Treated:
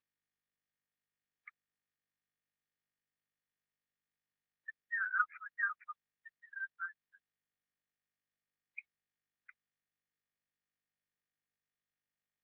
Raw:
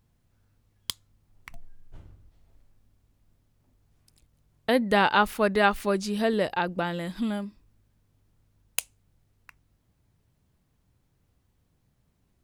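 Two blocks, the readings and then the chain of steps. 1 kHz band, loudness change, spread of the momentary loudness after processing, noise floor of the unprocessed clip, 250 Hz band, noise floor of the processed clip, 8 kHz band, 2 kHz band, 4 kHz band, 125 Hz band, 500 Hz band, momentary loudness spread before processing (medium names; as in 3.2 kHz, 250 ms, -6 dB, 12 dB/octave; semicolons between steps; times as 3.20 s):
-17.5 dB, -12.0 dB, 18 LU, -71 dBFS, under -40 dB, under -85 dBFS, under -40 dB, -8.0 dB, under -40 dB, under -40 dB, under -40 dB, 15 LU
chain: spectral gate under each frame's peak -10 dB strong; brick-wall FIR band-pass 1.2–2.5 kHz; trim -2.5 dB; Opus 6 kbps 48 kHz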